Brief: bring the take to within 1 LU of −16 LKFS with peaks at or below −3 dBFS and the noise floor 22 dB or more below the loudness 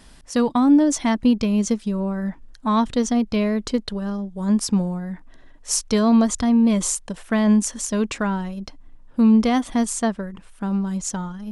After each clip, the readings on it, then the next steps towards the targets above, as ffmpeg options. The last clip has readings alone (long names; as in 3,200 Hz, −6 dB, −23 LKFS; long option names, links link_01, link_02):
integrated loudness −21.0 LKFS; sample peak −7.0 dBFS; target loudness −16.0 LKFS
→ -af "volume=5dB,alimiter=limit=-3dB:level=0:latency=1"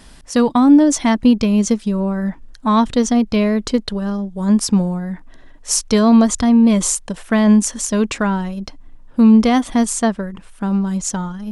integrated loudness −16.0 LKFS; sample peak −3.0 dBFS; background noise floor −42 dBFS